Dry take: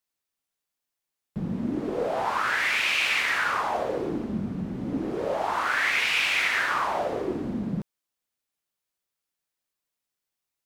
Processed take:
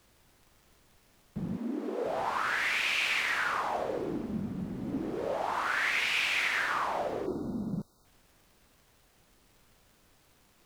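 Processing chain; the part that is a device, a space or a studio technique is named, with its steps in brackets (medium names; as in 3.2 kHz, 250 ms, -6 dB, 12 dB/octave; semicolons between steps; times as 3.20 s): vinyl LP (crackle; pink noise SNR 30 dB); 1.57–2.05 s: Chebyshev high-pass 210 Hz, order 8; 7.26–8.05 s: spectral selection erased 1.5–3.6 kHz; trim -5 dB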